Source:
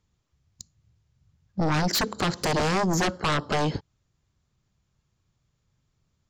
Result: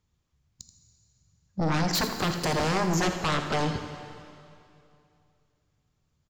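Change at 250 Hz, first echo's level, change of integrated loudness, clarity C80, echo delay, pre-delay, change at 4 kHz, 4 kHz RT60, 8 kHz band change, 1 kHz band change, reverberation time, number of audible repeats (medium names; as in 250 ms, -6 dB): -1.5 dB, -12.5 dB, -1.5 dB, 7.0 dB, 82 ms, 5 ms, -1.5 dB, 2.4 s, -1.5 dB, -1.5 dB, 2.7 s, 1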